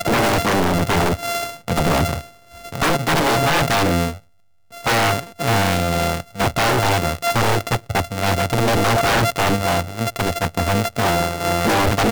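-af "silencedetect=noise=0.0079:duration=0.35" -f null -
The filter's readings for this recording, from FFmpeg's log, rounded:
silence_start: 4.24
silence_end: 4.71 | silence_duration: 0.47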